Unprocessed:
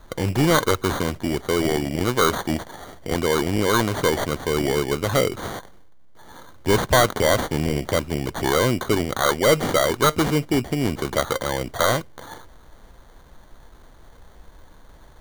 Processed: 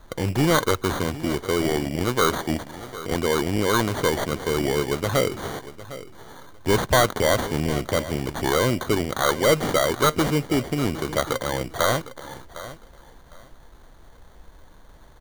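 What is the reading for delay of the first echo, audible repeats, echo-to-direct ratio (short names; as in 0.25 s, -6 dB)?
0.756 s, 2, -15.5 dB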